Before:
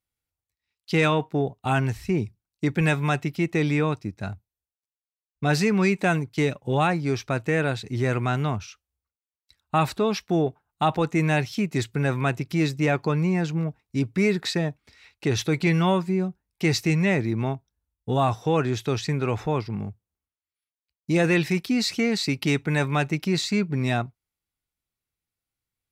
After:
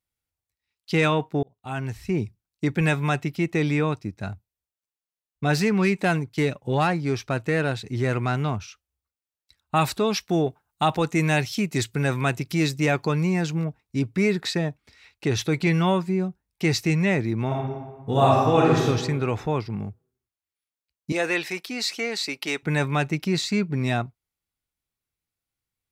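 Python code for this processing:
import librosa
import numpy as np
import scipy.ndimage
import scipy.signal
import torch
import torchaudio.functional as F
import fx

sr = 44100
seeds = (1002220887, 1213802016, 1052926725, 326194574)

y = fx.self_delay(x, sr, depth_ms=0.053, at=(5.57, 8.54))
y = fx.high_shelf(y, sr, hz=3500.0, db=7.5, at=(9.76, 13.65))
y = fx.reverb_throw(y, sr, start_s=17.46, length_s=1.4, rt60_s=1.3, drr_db=-4.0)
y = fx.highpass(y, sr, hz=460.0, slope=12, at=(21.12, 22.63))
y = fx.edit(y, sr, fx.fade_in_span(start_s=1.43, length_s=0.78), tone=tone)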